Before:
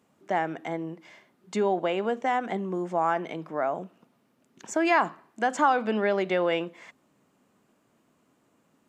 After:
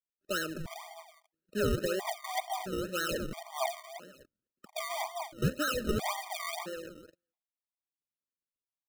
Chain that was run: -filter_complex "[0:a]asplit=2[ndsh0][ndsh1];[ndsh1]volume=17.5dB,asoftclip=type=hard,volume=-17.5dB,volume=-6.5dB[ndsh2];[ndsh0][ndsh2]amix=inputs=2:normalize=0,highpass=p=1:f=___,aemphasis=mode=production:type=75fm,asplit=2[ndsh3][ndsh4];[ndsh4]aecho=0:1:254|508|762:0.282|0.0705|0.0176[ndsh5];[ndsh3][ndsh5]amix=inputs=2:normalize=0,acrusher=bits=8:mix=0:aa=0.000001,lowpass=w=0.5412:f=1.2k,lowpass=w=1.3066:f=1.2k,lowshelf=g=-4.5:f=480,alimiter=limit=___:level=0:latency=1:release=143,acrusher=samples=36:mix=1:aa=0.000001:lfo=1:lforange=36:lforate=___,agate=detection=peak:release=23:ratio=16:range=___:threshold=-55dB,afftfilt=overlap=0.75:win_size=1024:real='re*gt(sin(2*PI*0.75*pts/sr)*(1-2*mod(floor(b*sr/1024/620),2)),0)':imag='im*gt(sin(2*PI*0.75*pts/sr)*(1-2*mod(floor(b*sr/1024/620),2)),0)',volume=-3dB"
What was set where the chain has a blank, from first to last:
160, -15dB, 1.9, -29dB